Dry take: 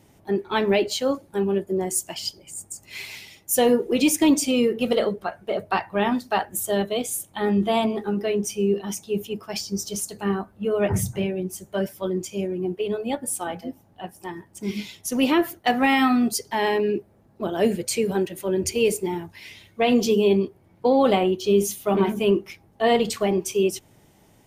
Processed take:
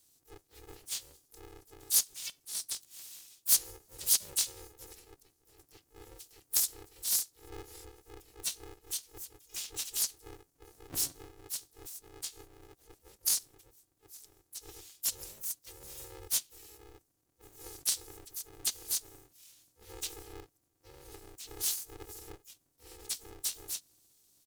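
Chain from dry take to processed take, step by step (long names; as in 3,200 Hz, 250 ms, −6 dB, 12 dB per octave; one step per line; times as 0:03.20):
inverse Chebyshev band-stop filter 710–1,700 Hz, stop band 80 dB
first-order pre-emphasis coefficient 0.9
pitch-shifted copies added −12 semitones −5 dB, −7 semitones −2 dB, +4 semitones −2 dB
ring modulator with a square carrier 210 Hz
level −5.5 dB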